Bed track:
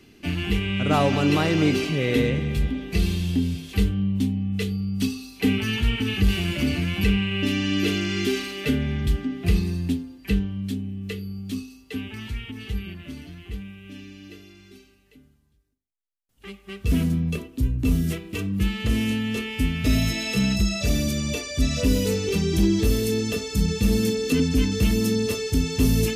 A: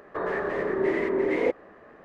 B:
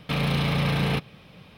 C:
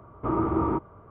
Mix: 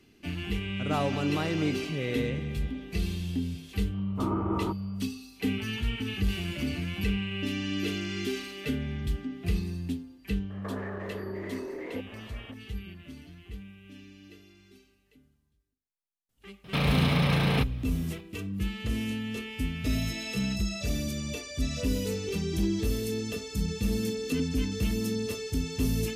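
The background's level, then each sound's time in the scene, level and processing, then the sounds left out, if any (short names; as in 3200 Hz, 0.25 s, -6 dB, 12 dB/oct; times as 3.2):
bed track -8 dB
3.94 add C -5.5 dB
10.5 add A -0.5 dB + compressor, threshold -35 dBFS
16.64 add B -1 dB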